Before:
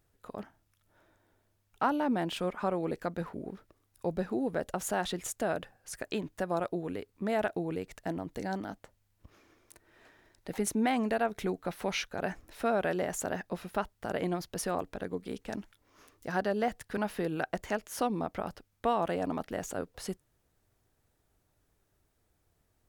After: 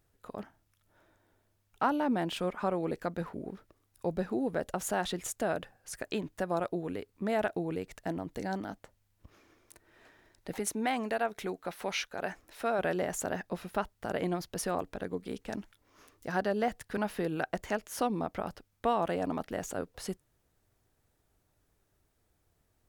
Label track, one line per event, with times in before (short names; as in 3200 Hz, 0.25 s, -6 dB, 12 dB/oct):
10.590000	12.790000	low shelf 250 Hz -10.5 dB